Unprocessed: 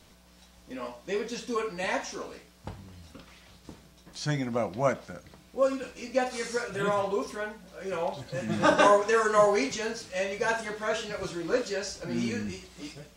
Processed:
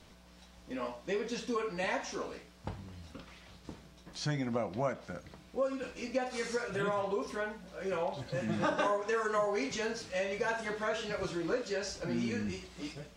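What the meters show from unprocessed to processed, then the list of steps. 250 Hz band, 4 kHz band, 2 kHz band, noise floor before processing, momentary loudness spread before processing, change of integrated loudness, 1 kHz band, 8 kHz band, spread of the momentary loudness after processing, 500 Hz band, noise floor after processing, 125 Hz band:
-4.0 dB, -5.0 dB, -6.0 dB, -57 dBFS, 20 LU, -6.5 dB, -7.5 dB, -7.0 dB, 15 LU, -6.5 dB, -58 dBFS, -3.5 dB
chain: high shelf 8100 Hz -10.5 dB; compressor 3:1, threshold -31 dBFS, peak gain reduction 11.5 dB

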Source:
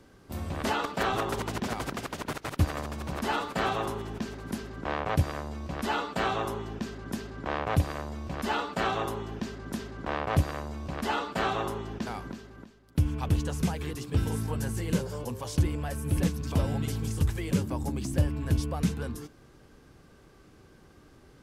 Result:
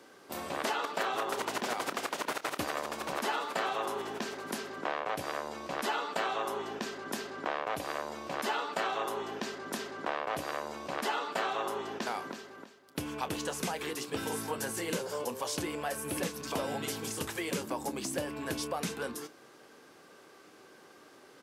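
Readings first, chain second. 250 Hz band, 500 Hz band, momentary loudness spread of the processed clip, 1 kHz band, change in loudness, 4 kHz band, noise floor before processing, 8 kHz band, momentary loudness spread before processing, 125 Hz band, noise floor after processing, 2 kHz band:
-7.0 dB, -1.0 dB, 6 LU, -1.0 dB, -4.0 dB, +0.5 dB, -56 dBFS, +3.0 dB, 9 LU, -18.5 dB, -57 dBFS, -0.5 dB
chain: HPF 400 Hz 12 dB/oct; compressor, threshold -34 dBFS, peak gain reduction 9.5 dB; doubler 29 ms -14 dB; gain +4.5 dB

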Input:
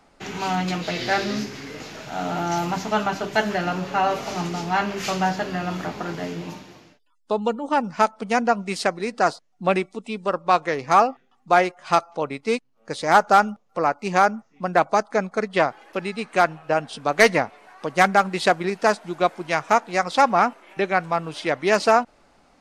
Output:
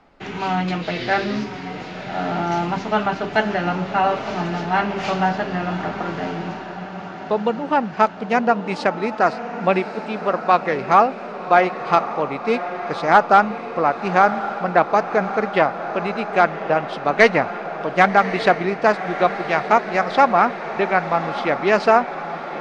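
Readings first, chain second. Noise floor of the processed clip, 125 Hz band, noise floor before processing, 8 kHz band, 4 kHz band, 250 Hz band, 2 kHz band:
-32 dBFS, +3.0 dB, -62 dBFS, n/a, -1.0 dB, +3.0 dB, +2.5 dB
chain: LPF 3400 Hz 12 dB/oct; on a send: diffused feedback echo 1.144 s, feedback 62%, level -11 dB; on the sum: gain +2.5 dB

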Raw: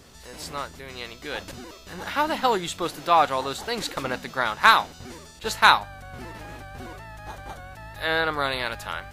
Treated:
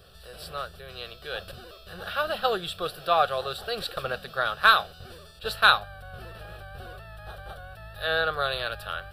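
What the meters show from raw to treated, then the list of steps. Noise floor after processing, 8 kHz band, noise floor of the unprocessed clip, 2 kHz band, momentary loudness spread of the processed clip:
-49 dBFS, -10.0 dB, -46 dBFS, -1.5 dB, 23 LU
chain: fixed phaser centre 1400 Hz, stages 8

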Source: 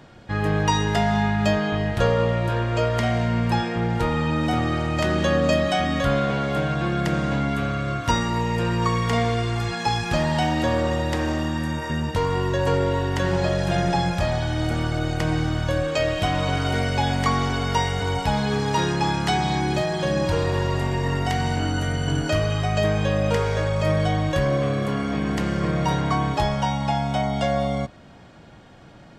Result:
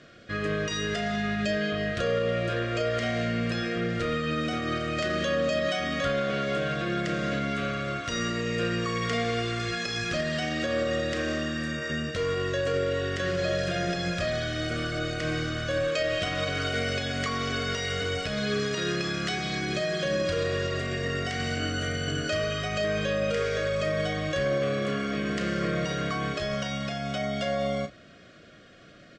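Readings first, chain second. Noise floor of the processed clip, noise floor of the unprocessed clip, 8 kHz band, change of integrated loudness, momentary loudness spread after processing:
-51 dBFS, -46 dBFS, -3.5 dB, -5.5 dB, 3 LU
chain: spectral gain 1.42–1.71, 640–1400 Hz -7 dB; LPF 7400 Hz 24 dB/oct; low shelf 260 Hz -11 dB; notches 60/120 Hz; limiter -18.5 dBFS, peak gain reduction 8.5 dB; Butterworth band-stop 880 Hz, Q 1.8; doubler 34 ms -10.5 dB

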